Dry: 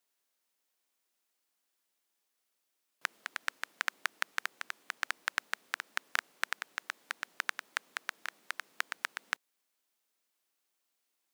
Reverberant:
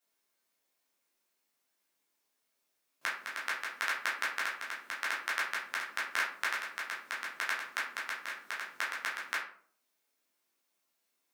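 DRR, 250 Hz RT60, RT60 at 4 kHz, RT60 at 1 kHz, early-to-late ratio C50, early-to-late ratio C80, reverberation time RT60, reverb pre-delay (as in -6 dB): -7.0 dB, 0.60 s, 0.30 s, 0.50 s, 5.0 dB, 9.5 dB, 0.55 s, 10 ms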